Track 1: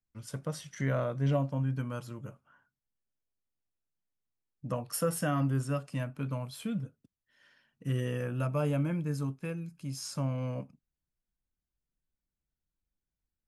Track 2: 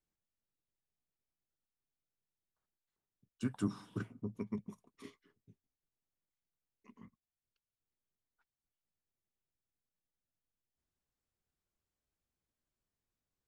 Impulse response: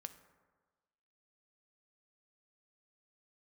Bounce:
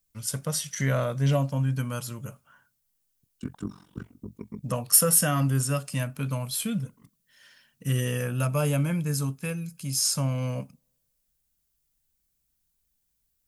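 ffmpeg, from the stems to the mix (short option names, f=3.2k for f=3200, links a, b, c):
-filter_complex "[0:a]equalizer=f=320:w=4.8:g=-7.5,crystalizer=i=5:c=0,volume=2dB,asplit=2[a][b];[b]volume=-24dB[c];[1:a]tremolo=f=46:d=0.947,volume=2dB[d];[2:a]atrim=start_sample=2205[e];[c][e]afir=irnorm=-1:irlink=0[f];[a][d][f]amix=inputs=3:normalize=0,asoftclip=type=tanh:threshold=-4.5dB,lowshelf=f=340:g=4"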